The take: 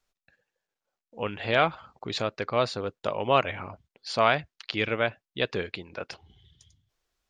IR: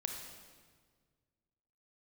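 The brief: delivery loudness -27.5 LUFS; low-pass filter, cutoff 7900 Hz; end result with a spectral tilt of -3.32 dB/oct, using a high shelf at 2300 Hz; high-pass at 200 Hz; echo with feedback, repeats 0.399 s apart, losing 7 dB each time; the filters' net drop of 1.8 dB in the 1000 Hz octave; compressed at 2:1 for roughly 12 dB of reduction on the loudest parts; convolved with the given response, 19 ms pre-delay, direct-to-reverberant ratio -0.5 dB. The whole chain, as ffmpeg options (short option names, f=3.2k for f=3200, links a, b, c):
-filter_complex "[0:a]highpass=200,lowpass=7.9k,equalizer=f=1k:t=o:g=-3.5,highshelf=f=2.3k:g=4.5,acompressor=threshold=-40dB:ratio=2,aecho=1:1:399|798|1197|1596|1995:0.447|0.201|0.0905|0.0407|0.0183,asplit=2[a][b];[1:a]atrim=start_sample=2205,adelay=19[c];[b][c]afir=irnorm=-1:irlink=0,volume=0dB[d];[a][d]amix=inputs=2:normalize=0,volume=7dB"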